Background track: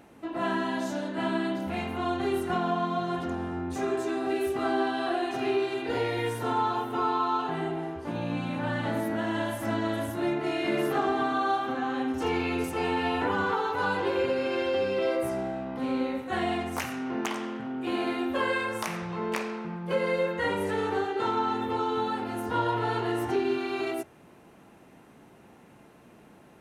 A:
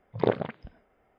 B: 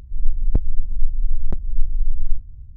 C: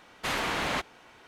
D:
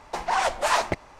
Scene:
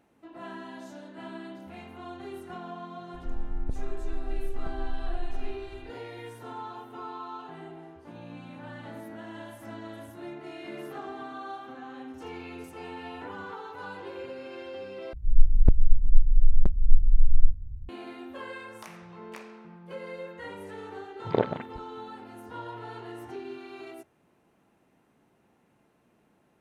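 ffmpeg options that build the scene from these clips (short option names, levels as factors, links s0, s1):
-filter_complex "[2:a]asplit=2[s0][s1];[0:a]volume=0.237[s2];[s0]acompressor=threshold=0.158:ratio=6:attack=3.2:release=140:knee=1:detection=peak[s3];[s2]asplit=2[s4][s5];[s4]atrim=end=15.134[s6];[s1]atrim=end=2.76[s7];[s5]atrim=start=17.886[s8];[s3]atrim=end=2.76,asetpts=PTS-STARTPTS,volume=0.398,afade=t=in:d=0.004:c=hsin,afade=t=out:st=2.756:d=0.004:c=hsin,adelay=3140[s9];[1:a]atrim=end=1.18,asetpts=PTS-STARTPTS,volume=0.891,afade=t=in:d=0.004:c=hsin,afade=t=out:st=1.176:d=0.004:c=hsin,adelay=21110[s10];[s6][s7]acrossfade=d=0.004:c1=hsin:c2=hsin[s11];[s11][s8]acrossfade=d=0.004:c1=hsin:c2=hsin[s12];[s12][s9][s10]amix=inputs=3:normalize=0"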